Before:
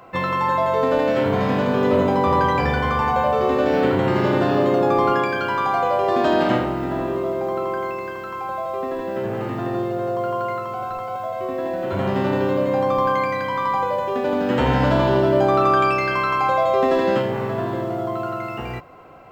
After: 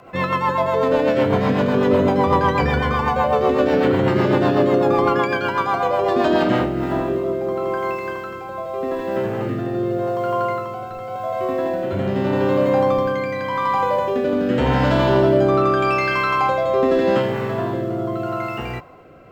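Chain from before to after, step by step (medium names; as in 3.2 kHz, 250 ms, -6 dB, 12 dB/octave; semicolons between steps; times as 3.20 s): rotary cabinet horn 8 Hz, later 0.85 Hz, at 6.07 s; in parallel at -8 dB: saturation -18 dBFS, distortion -14 dB; on the sum: trim +1.5 dB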